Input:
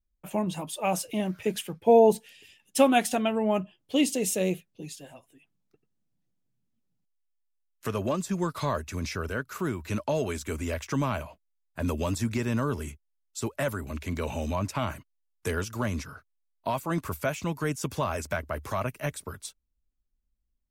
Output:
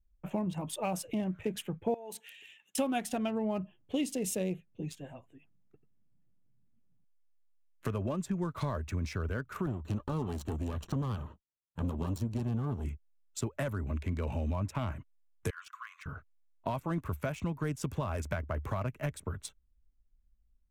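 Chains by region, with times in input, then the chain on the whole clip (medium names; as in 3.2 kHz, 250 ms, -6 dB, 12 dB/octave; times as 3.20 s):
1.94–2.78 s: high-pass 390 Hz 6 dB/octave + tilt shelf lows -9 dB, about 900 Hz + compression 12:1, threshold -31 dBFS
9.66–12.85 s: comb filter that takes the minimum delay 0.71 ms + high-pass 96 Hz 6 dB/octave + high-order bell 1.9 kHz -10 dB 1.2 oct
15.50–16.06 s: compression 2.5:1, threshold -32 dBFS + brick-wall FIR high-pass 1 kHz + tilt EQ -1.5 dB/octave
whole clip: local Wiener filter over 9 samples; bass shelf 160 Hz +11 dB; compression 3:1, threshold -31 dBFS; trim -1 dB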